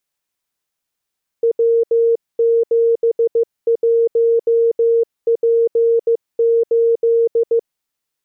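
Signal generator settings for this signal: Morse "W71P8" 15 wpm 462 Hz -10.5 dBFS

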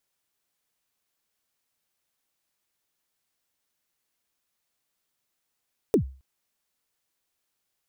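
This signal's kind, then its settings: kick drum length 0.27 s, from 490 Hz, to 66 Hz, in 98 ms, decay 0.37 s, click on, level -13 dB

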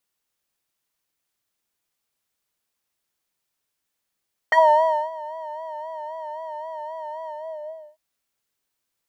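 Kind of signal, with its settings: synth patch with vibrato D#5, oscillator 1 square, oscillator 2 sine, interval +7 st, oscillator 2 level -3 dB, sub -27 dB, noise -26 dB, filter bandpass, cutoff 510 Hz, Q 5.7, filter envelope 2 oct, filter decay 0.07 s, filter sustain 35%, attack 2.4 ms, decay 0.58 s, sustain -20.5 dB, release 0.68 s, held 2.77 s, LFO 3.8 Hz, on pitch 69 cents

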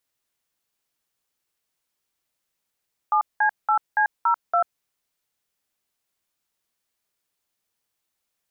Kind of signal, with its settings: DTMF "7C8C02", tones 91 ms, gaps 192 ms, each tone -19 dBFS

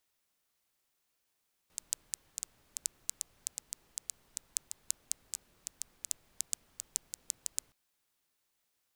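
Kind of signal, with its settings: rain from filtered ticks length 6.02 s, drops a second 5.5, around 7.4 kHz, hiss -24.5 dB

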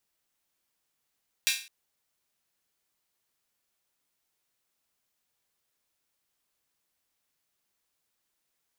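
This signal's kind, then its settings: open hi-hat length 0.21 s, high-pass 2.5 kHz, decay 0.39 s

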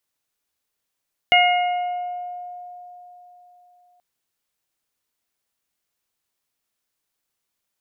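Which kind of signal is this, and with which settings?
additive tone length 2.68 s, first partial 715 Hz, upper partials -14/1/-2 dB, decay 3.80 s, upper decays 1.46/1.18/1.09 s, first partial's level -14 dB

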